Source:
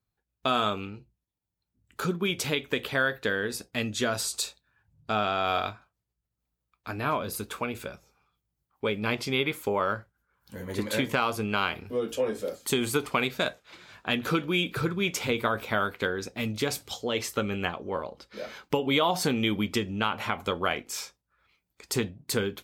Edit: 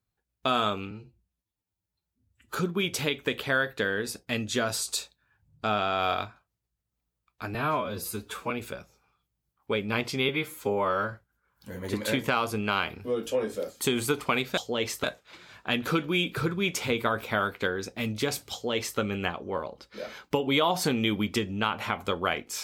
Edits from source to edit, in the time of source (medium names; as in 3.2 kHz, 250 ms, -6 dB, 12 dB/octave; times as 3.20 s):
0.91–2.00 s: stretch 1.5×
7.00–7.64 s: stretch 1.5×
9.42–9.98 s: stretch 1.5×
16.92–17.38 s: copy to 13.43 s